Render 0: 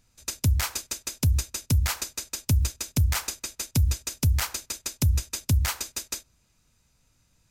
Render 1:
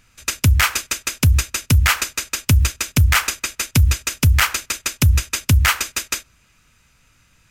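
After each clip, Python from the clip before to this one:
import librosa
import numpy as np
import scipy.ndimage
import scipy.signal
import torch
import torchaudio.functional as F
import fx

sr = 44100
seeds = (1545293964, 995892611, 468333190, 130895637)

y = fx.band_shelf(x, sr, hz=1900.0, db=8.5, octaves=1.7)
y = F.gain(torch.from_numpy(y), 8.0).numpy()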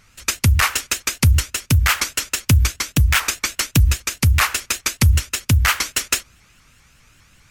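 y = fx.rider(x, sr, range_db=5, speed_s=0.5)
y = fx.vibrato_shape(y, sr, shape='saw_up', rate_hz=5.0, depth_cents=250.0)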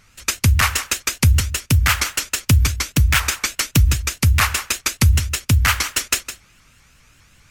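y = x + 10.0 ** (-12.0 / 20.0) * np.pad(x, (int(160 * sr / 1000.0), 0))[:len(x)]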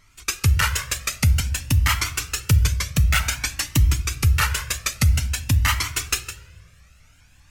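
y = fx.room_shoebox(x, sr, seeds[0], volume_m3=1700.0, walls='mixed', distance_m=0.39)
y = fx.comb_cascade(y, sr, direction='rising', hz=0.52)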